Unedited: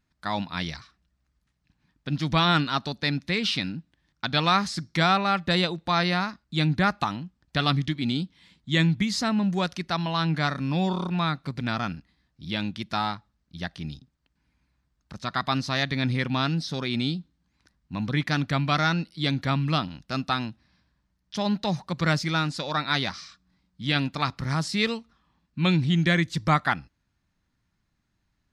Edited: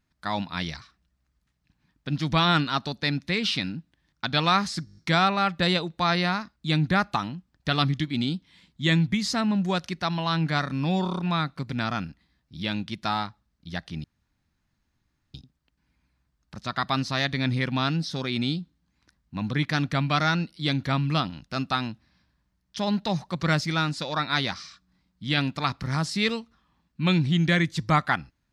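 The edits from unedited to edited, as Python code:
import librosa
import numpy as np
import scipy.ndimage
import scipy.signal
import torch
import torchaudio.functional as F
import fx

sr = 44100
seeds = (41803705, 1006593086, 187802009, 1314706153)

y = fx.edit(x, sr, fx.stutter(start_s=4.85, slice_s=0.02, count=7),
    fx.insert_room_tone(at_s=13.92, length_s=1.3), tone=tone)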